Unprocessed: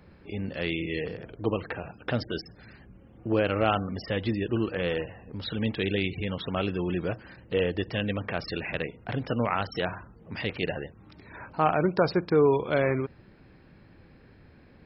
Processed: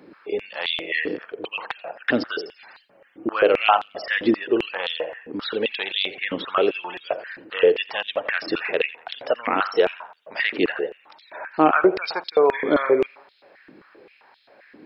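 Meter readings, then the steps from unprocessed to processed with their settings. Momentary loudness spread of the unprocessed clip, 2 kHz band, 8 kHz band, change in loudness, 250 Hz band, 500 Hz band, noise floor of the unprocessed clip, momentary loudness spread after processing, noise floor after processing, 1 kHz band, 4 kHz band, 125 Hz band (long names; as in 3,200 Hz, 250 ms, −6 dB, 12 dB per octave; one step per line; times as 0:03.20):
13 LU, +9.0 dB, can't be measured, +6.0 dB, +3.0 dB, +6.5 dB, −55 dBFS, 13 LU, −57 dBFS, +7.5 dB, +9.0 dB, −13.5 dB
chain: healed spectral selection 0:12.57–0:12.90, 1,500–3,100 Hz after
tape delay 86 ms, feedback 54%, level −15 dB, low-pass 3,300 Hz
high-pass on a step sequencer 7.6 Hz 300–3,600 Hz
level +4.5 dB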